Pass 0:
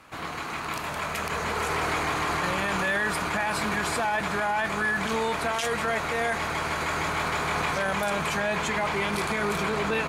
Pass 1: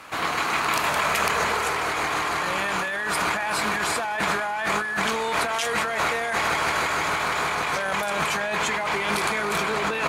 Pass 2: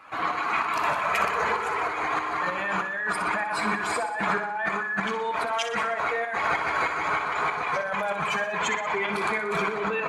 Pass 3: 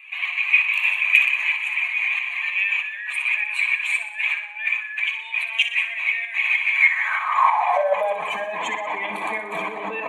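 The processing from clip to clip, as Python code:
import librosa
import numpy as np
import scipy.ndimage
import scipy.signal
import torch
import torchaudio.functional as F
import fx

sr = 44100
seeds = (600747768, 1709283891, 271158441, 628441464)

y1 = fx.low_shelf(x, sr, hz=280.0, db=-10.5)
y1 = fx.over_compress(y1, sr, threshold_db=-32.0, ratio=-1.0)
y1 = y1 * 10.0 ** (7.0 / 20.0)
y2 = fx.spec_expand(y1, sr, power=1.7)
y2 = fx.tremolo_shape(y2, sr, shape='saw_up', hz=3.2, depth_pct=55)
y2 = fx.echo_feedback(y2, sr, ms=61, feedback_pct=58, wet_db=-9.5)
y3 = np.clip(y2, -10.0 ** (-16.0 / 20.0), 10.0 ** (-16.0 / 20.0))
y3 = fx.fixed_phaser(y3, sr, hz=1400.0, stages=6)
y3 = fx.filter_sweep_highpass(y3, sr, from_hz=2500.0, to_hz=320.0, start_s=6.72, end_s=8.39, q=6.8)
y3 = y3 * 10.0 ** (2.0 / 20.0)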